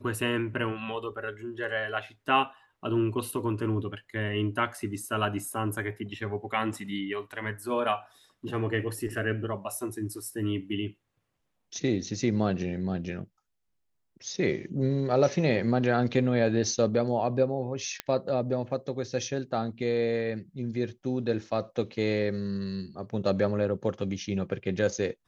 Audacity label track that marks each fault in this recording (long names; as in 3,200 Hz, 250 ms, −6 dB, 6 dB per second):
18.000000	18.000000	click −14 dBFS